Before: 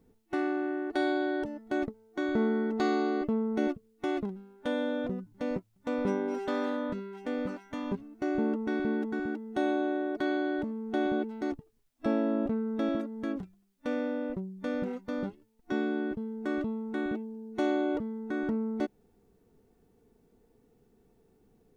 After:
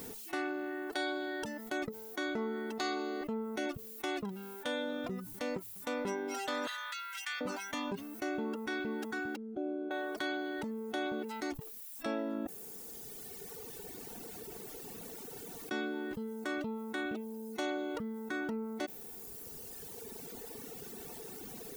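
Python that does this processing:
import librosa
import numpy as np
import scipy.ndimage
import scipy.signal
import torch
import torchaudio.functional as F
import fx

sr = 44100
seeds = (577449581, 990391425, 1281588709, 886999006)

y = fx.highpass(x, sr, hz=1200.0, slope=24, at=(6.67, 7.41))
y = fx.moving_average(y, sr, points=46, at=(9.36, 9.91))
y = fx.edit(y, sr, fx.room_tone_fill(start_s=12.47, length_s=3.24), tone=tone)
y = fx.tilt_eq(y, sr, slope=3.5)
y = fx.dereverb_blind(y, sr, rt60_s=1.8)
y = fx.env_flatten(y, sr, amount_pct=70)
y = y * librosa.db_to_amplitude(-4.5)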